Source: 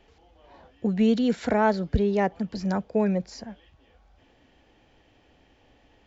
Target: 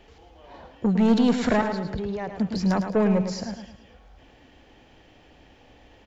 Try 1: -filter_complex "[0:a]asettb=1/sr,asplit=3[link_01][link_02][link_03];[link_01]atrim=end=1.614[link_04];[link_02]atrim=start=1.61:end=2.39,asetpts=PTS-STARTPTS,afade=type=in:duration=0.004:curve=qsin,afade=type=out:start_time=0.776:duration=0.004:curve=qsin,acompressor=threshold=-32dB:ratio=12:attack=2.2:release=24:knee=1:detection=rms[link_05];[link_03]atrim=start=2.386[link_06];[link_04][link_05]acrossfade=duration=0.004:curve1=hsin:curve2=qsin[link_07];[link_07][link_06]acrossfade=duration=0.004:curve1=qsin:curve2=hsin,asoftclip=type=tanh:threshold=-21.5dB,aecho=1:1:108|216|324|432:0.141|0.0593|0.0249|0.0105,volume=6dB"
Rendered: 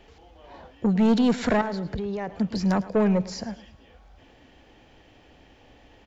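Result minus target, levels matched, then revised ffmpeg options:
echo-to-direct −9 dB
-filter_complex "[0:a]asettb=1/sr,asplit=3[link_01][link_02][link_03];[link_01]atrim=end=1.614[link_04];[link_02]atrim=start=1.61:end=2.39,asetpts=PTS-STARTPTS,afade=type=in:duration=0.004:curve=qsin,afade=type=out:start_time=0.776:duration=0.004:curve=qsin,acompressor=threshold=-32dB:ratio=12:attack=2.2:release=24:knee=1:detection=rms[link_05];[link_03]atrim=start=2.386[link_06];[link_04][link_05]acrossfade=duration=0.004:curve1=hsin:curve2=qsin[link_07];[link_07][link_06]acrossfade=duration=0.004:curve1=qsin:curve2=hsin,asoftclip=type=tanh:threshold=-21.5dB,aecho=1:1:108|216|324|432|540:0.398|0.167|0.0702|0.0295|0.0124,volume=6dB"

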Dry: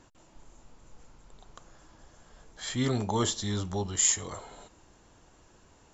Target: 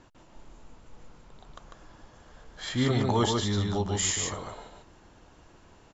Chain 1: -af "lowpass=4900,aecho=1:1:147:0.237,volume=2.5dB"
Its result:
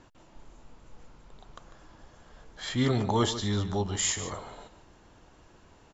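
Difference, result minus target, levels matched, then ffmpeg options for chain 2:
echo-to-direct −9 dB
-af "lowpass=4900,aecho=1:1:147:0.668,volume=2.5dB"

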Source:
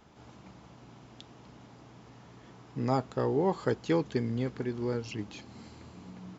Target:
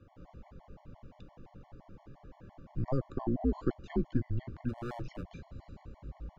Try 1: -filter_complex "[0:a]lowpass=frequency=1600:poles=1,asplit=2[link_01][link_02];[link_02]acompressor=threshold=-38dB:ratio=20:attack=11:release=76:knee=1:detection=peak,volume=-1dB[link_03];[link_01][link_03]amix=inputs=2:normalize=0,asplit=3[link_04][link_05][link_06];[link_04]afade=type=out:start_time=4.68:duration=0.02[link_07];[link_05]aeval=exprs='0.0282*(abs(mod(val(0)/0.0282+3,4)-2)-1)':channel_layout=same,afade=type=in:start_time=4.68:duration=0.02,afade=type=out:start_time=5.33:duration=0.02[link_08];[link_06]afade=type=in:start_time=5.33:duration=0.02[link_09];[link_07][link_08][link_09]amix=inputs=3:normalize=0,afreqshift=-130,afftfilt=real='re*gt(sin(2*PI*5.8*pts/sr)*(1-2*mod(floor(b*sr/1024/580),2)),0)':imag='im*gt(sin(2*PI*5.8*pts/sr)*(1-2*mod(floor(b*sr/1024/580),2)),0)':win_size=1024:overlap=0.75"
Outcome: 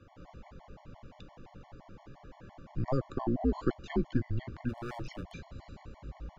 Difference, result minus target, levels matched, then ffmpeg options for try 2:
2,000 Hz band +4.5 dB
-filter_complex "[0:a]lowpass=frequency=600:poles=1,asplit=2[link_01][link_02];[link_02]acompressor=threshold=-38dB:ratio=20:attack=11:release=76:knee=1:detection=peak,volume=-1dB[link_03];[link_01][link_03]amix=inputs=2:normalize=0,asplit=3[link_04][link_05][link_06];[link_04]afade=type=out:start_time=4.68:duration=0.02[link_07];[link_05]aeval=exprs='0.0282*(abs(mod(val(0)/0.0282+3,4)-2)-1)':channel_layout=same,afade=type=in:start_time=4.68:duration=0.02,afade=type=out:start_time=5.33:duration=0.02[link_08];[link_06]afade=type=in:start_time=5.33:duration=0.02[link_09];[link_07][link_08][link_09]amix=inputs=3:normalize=0,afreqshift=-130,afftfilt=real='re*gt(sin(2*PI*5.8*pts/sr)*(1-2*mod(floor(b*sr/1024/580),2)),0)':imag='im*gt(sin(2*PI*5.8*pts/sr)*(1-2*mod(floor(b*sr/1024/580),2)),0)':win_size=1024:overlap=0.75"

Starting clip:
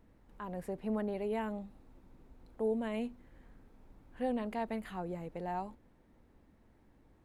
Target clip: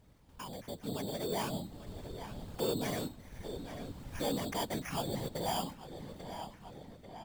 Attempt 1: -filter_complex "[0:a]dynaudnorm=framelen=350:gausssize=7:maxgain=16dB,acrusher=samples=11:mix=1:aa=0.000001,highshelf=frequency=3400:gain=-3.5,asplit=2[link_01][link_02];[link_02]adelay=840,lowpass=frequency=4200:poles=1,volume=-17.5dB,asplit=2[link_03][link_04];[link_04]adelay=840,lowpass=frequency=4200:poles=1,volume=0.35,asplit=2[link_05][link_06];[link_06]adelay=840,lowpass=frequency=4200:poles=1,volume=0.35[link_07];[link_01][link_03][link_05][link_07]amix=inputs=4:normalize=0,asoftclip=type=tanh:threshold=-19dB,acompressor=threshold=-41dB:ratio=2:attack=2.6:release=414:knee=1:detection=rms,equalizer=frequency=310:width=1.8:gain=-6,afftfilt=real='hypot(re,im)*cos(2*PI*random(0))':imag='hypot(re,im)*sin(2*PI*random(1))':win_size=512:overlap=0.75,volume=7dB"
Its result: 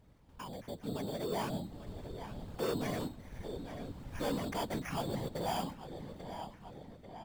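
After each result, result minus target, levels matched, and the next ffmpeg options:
soft clipping: distortion +8 dB; 8,000 Hz band −4.5 dB
-filter_complex "[0:a]dynaudnorm=framelen=350:gausssize=7:maxgain=16dB,acrusher=samples=11:mix=1:aa=0.000001,highshelf=frequency=3400:gain=-3.5,asplit=2[link_01][link_02];[link_02]adelay=840,lowpass=frequency=4200:poles=1,volume=-17.5dB,asplit=2[link_03][link_04];[link_04]adelay=840,lowpass=frequency=4200:poles=1,volume=0.35,asplit=2[link_05][link_06];[link_06]adelay=840,lowpass=frequency=4200:poles=1,volume=0.35[link_07];[link_01][link_03][link_05][link_07]amix=inputs=4:normalize=0,asoftclip=type=tanh:threshold=-11.5dB,acompressor=threshold=-41dB:ratio=2:attack=2.6:release=414:knee=1:detection=rms,equalizer=frequency=310:width=1.8:gain=-6,afftfilt=real='hypot(re,im)*cos(2*PI*random(0))':imag='hypot(re,im)*sin(2*PI*random(1))':win_size=512:overlap=0.75,volume=7dB"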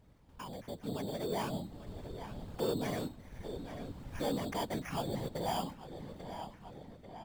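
8,000 Hz band −4.5 dB
-filter_complex "[0:a]dynaudnorm=framelen=350:gausssize=7:maxgain=16dB,acrusher=samples=11:mix=1:aa=0.000001,highshelf=frequency=3400:gain=3,asplit=2[link_01][link_02];[link_02]adelay=840,lowpass=frequency=4200:poles=1,volume=-17.5dB,asplit=2[link_03][link_04];[link_04]adelay=840,lowpass=frequency=4200:poles=1,volume=0.35,asplit=2[link_05][link_06];[link_06]adelay=840,lowpass=frequency=4200:poles=1,volume=0.35[link_07];[link_01][link_03][link_05][link_07]amix=inputs=4:normalize=0,asoftclip=type=tanh:threshold=-11.5dB,acompressor=threshold=-41dB:ratio=2:attack=2.6:release=414:knee=1:detection=rms,equalizer=frequency=310:width=1.8:gain=-6,afftfilt=real='hypot(re,im)*cos(2*PI*random(0))':imag='hypot(re,im)*sin(2*PI*random(1))':win_size=512:overlap=0.75,volume=7dB"

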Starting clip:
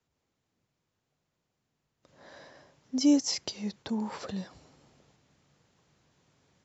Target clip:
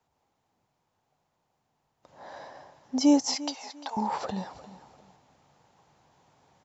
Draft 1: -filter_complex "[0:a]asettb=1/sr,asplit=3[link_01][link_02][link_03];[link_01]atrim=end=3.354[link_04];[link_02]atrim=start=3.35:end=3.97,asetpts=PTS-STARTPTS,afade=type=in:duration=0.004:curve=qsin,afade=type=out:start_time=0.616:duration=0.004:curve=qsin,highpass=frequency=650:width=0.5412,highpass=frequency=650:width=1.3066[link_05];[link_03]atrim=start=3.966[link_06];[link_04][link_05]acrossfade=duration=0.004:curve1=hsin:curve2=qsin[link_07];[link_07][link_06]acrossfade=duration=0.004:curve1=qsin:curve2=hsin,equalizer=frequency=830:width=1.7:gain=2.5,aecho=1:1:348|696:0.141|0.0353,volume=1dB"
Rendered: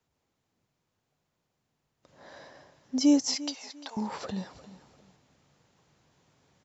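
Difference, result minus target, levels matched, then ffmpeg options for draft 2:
1,000 Hz band −8.5 dB
-filter_complex "[0:a]asettb=1/sr,asplit=3[link_01][link_02][link_03];[link_01]atrim=end=3.354[link_04];[link_02]atrim=start=3.35:end=3.97,asetpts=PTS-STARTPTS,afade=type=in:duration=0.004:curve=qsin,afade=type=out:start_time=0.616:duration=0.004:curve=qsin,highpass=frequency=650:width=0.5412,highpass=frequency=650:width=1.3066[link_05];[link_03]atrim=start=3.966[link_06];[link_04][link_05]acrossfade=duration=0.004:curve1=hsin:curve2=qsin[link_07];[link_07][link_06]acrossfade=duration=0.004:curve1=qsin:curve2=hsin,equalizer=frequency=830:width=1.7:gain=13.5,aecho=1:1:348|696:0.141|0.0353,volume=1dB"

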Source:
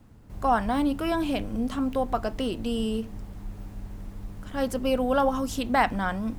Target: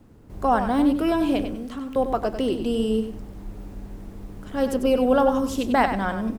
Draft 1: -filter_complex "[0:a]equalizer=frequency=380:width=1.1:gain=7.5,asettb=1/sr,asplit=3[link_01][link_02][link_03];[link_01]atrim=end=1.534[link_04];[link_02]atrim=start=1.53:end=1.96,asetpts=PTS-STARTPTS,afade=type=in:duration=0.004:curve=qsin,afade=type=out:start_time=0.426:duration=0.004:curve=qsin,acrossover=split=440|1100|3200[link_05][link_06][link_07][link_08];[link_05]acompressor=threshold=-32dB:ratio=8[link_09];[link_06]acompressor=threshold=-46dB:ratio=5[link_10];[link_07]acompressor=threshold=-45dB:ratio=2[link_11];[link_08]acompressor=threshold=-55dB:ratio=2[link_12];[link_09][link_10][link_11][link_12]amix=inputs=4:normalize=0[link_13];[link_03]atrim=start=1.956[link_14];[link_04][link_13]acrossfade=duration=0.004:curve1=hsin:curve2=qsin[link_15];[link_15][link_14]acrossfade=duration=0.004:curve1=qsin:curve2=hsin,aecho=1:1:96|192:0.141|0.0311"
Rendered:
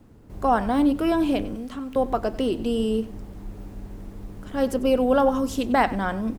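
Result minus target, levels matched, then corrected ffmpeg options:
echo-to-direct −8.5 dB
-filter_complex "[0:a]equalizer=frequency=380:width=1.1:gain=7.5,asettb=1/sr,asplit=3[link_01][link_02][link_03];[link_01]atrim=end=1.534[link_04];[link_02]atrim=start=1.53:end=1.96,asetpts=PTS-STARTPTS,afade=type=in:duration=0.004:curve=qsin,afade=type=out:start_time=0.426:duration=0.004:curve=qsin,acrossover=split=440|1100|3200[link_05][link_06][link_07][link_08];[link_05]acompressor=threshold=-32dB:ratio=8[link_09];[link_06]acompressor=threshold=-46dB:ratio=5[link_10];[link_07]acompressor=threshold=-45dB:ratio=2[link_11];[link_08]acompressor=threshold=-55dB:ratio=2[link_12];[link_09][link_10][link_11][link_12]amix=inputs=4:normalize=0[link_13];[link_03]atrim=start=1.956[link_14];[link_04][link_13]acrossfade=duration=0.004:curve1=hsin:curve2=qsin[link_15];[link_15][link_14]acrossfade=duration=0.004:curve1=qsin:curve2=hsin,aecho=1:1:96|192|288:0.376|0.0827|0.0182"

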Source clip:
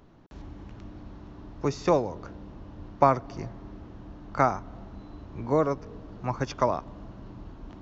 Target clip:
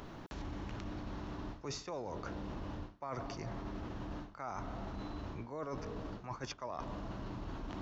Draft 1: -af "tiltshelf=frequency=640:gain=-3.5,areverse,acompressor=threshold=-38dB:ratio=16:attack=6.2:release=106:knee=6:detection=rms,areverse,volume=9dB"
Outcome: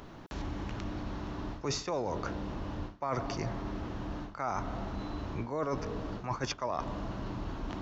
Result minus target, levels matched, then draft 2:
downward compressor: peak gain reduction −8.5 dB
-af "tiltshelf=frequency=640:gain=-3.5,areverse,acompressor=threshold=-47dB:ratio=16:attack=6.2:release=106:knee=6:detection=rms,areverse,volume=9dB"

